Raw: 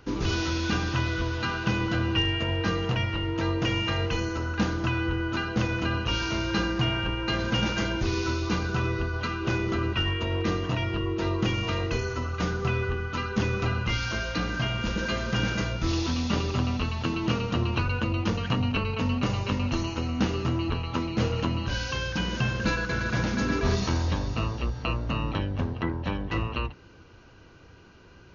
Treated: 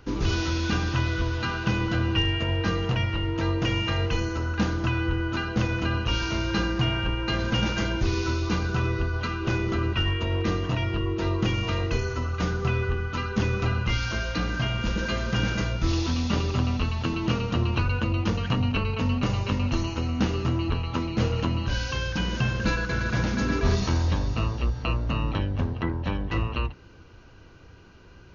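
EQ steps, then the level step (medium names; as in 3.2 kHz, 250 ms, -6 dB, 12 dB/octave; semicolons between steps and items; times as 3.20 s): bass shelf 75 Hz +7 dB; 0.0 dB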